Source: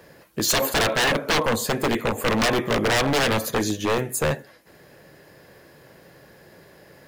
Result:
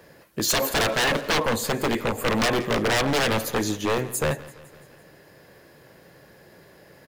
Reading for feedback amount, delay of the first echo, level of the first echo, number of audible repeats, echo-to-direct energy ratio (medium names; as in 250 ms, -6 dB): 57%, 169 ms, -19.0 dB, 4, -17.5 dB